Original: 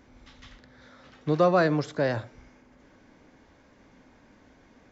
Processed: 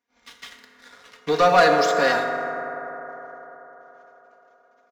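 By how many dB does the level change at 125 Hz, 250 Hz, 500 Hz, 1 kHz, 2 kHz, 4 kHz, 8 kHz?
-7.0 dB, -1.5 dB, +5.5 dB, +11.5 dB, +11.5 dB, +13.5 dB, n/a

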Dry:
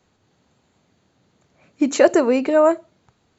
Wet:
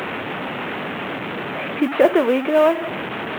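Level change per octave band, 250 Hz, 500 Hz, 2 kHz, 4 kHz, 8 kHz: -0.5 dB, 0.0 dB, +6.0 dB, +6.5 dB, n/a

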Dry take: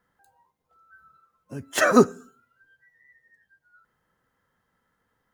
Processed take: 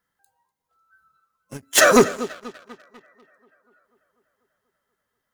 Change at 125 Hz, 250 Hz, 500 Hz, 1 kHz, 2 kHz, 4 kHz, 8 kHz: -1.0, +0.5, +4.0, +4.0, +6.0, +10.5, +12.0 dB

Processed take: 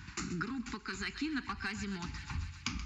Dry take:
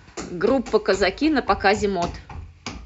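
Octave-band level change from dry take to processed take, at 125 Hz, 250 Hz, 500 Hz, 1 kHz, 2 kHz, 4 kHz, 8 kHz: -8.0 dB, -14.5 dB, -30.5 dB, -20.5 dB, -13.5 dB, -12.0 dB, n/a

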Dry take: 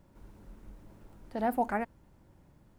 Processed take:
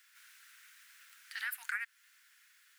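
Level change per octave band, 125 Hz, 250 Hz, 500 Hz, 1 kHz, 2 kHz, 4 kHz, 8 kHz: under -40 dB, under -40 dB, under -40 dB, -17.5 dB, +5.5 dB, n/a, +9.0 dB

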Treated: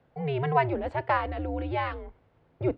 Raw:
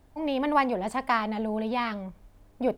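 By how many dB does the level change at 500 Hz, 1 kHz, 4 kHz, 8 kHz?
+0.5 dB, -1.0 dB, -6.0 dB, under -20 dB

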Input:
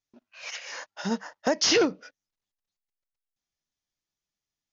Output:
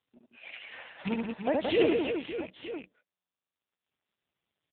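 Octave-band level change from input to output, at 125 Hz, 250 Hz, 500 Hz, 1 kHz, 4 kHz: +0.5, -0.5, 0.0, -4.0, -11.0 dB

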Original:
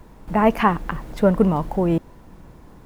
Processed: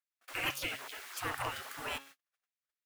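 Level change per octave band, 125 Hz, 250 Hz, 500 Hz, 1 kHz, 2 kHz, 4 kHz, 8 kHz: -26.5 dB, -31.5 dB, -26.0 dB, -18.5 dB, -7.0 dB, +1.0 dB, n/a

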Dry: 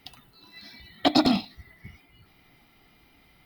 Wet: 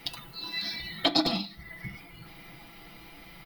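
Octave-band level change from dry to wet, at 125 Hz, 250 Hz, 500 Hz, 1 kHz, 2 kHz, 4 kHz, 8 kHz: -2.0, -7.5, -4.0, -5.5, +1.5, +2.0, -1.5 dB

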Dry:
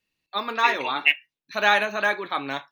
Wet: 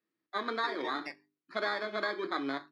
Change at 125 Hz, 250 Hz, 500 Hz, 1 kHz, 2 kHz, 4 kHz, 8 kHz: n/a, -2.0 dB, -7.0 dB, -11.5 dB, -14.0 dB, -12.5 dB, under -15 dB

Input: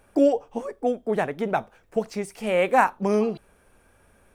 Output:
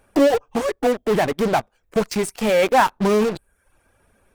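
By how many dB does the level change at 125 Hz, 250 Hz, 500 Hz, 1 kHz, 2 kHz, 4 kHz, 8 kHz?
+6.5, +4.0, +4.5, +4.0, +4.0, +11.5, +11.5 dB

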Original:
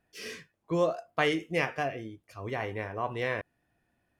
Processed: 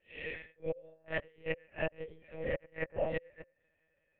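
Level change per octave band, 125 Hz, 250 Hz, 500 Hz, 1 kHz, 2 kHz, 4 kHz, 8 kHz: -8.5 dB, -11.5 dB, -6.0 dB, -15.0 dB, -7.0 dB, -13.0 dB, under -30 dB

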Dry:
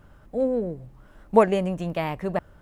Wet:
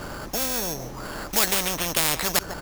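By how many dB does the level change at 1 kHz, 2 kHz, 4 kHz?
-2.5, +8.0, +18.0 dB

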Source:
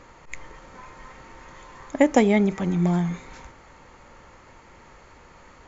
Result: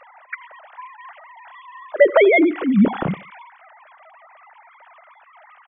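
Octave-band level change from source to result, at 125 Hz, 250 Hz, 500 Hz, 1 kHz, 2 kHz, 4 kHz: -2.5, +3.0, +8.0, +3.0, +10.0, +4.0 dB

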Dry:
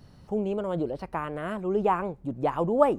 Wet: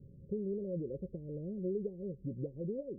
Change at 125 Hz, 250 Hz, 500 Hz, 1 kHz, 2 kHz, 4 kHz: -5.5 dB, -9.0 dB, -12.5 dB, under -40 dB, under -40 dB, under -35 dB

